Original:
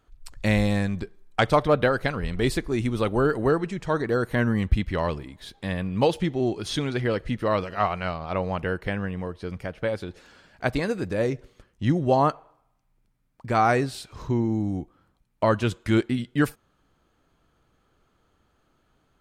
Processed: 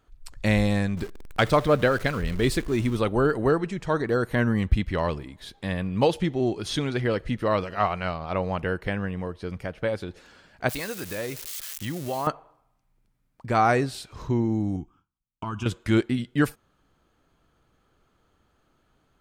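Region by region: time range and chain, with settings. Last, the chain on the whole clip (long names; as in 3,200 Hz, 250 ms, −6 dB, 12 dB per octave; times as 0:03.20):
0:00.97–0:02.97: converter with a step at zero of −35.5 dBFS + parametric band 810 Hz −4 dB 0.46 octaves
0:10.69–0:12.27: spike at every zero crossing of −26.5 dBFS + tilt shelving filter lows −5.5 dB, about 860 Hz + downward compressor 2.5 to 1, threshold −29 dBFS
0:14.76–0:15.66: noise gate with hold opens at −51 dBFS, closes at −54 dBFS + downward compressor 10 to 1, threshold −22 dBFS + phaser with its sweep stopped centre 2,800 Hz, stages 8
whole clip: no processing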